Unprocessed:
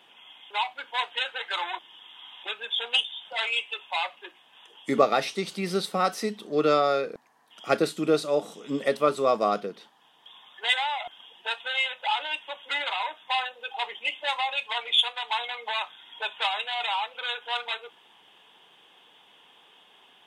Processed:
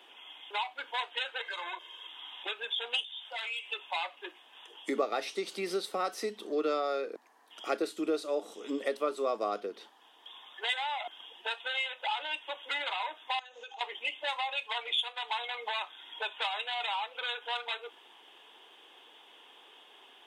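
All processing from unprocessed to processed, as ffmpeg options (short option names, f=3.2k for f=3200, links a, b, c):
-filter_complex "[0:a]asettb=1/sr,asplit=3[a][b][c];[a]atrim=end=1.414[d];[b]atrim=start=1.41:end=2.07,asetpts=PTS-STARTPTS,afade=t=in:d=0.004:c=qsin,afade=t=out:st=0.656:d=0.004:c=qsin,equalizer=f=6.6k:w=6:g=3.5,aecho=1:1:1.9:0.79,atrim=end_sample=29106,acompressor=threshold=-34dB:ratio=6:attack=3.2:release=140:knee=1:detection=peak[e];[c]atrim=start=2.066[f];[d][e]acrossfade=d=0.004:c1=hsin:c2=qsin[g];[g][f]acrossfade=d=0.004:c1=qsin:c2=hsin,asettb=1/sr,asplit=3[h][i][j];[h]atrim=end=3.044[k];[i]atrim=start=3.04:end=3.66,asetpts=PTS-STARTPTS,afade=t=in:d=0.004:c=qsin,afade=t=out:st=0.616:d=0.004:c=qsin,highpass=f=960:p=1,asoftclip=type=hard:threshold=-19dB,acompressor=threshold=-33dB:ratio=4:attack=3.2:release=140:knee=1:detection=peak[l];[j]atrim=start=3.656[m];[k][l]acrossfade=d=0.004:c1=hsin:c2=qsin[n];[n][m]acrossfade=d=0.004:c1=qsin:c2=hsin,asettb=1/sr,asplit=3[o][p][q];[o]atrim=end=13.394[r];[p]atrim=start=13.39:end=13.81,asetpts=PTS-STARTPTS,afade=t=in:d=0.004:c=qsin,afade=t=out:st=0.416:d=0.004:c=qsin,acompressor=threshold=-45dB:ratio=5:attack=3.2:release=140:knee=1:detection=peak,lowpass=f=6.5k:t=q:w=12[s];[q]atrim=start=13.806[t];[r][s]acrossfade=d=0.004:c1=hsin:c2=qsin[u];[u][t]acrossfade=d=0.004:c1=qsin:c2=hsin,highpass=f=270:w=0.5412,highpass=f=270:w=1.3066,equalizer=f=350:t=o:w=0.77:g=3.5,acompressor=threshold=-35dB:ratio=2"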